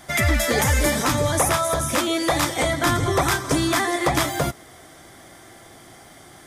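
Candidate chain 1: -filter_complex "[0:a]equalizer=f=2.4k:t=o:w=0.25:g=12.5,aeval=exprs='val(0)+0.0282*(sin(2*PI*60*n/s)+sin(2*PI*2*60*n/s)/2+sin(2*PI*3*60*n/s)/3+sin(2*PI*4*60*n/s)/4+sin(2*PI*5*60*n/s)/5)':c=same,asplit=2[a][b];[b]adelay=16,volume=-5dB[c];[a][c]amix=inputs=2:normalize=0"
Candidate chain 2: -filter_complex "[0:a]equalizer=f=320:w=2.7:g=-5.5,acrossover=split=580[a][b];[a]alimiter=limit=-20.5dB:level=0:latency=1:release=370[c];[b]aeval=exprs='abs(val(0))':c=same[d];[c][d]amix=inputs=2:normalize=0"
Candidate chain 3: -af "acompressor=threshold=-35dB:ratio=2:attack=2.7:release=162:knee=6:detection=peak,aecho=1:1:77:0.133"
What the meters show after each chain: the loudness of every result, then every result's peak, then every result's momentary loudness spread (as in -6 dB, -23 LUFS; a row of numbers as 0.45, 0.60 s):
-18.0, -26.0, -30.5 LUFS; -4.5, -8.0, -18.0 dBFS; 15, 3, 15 LU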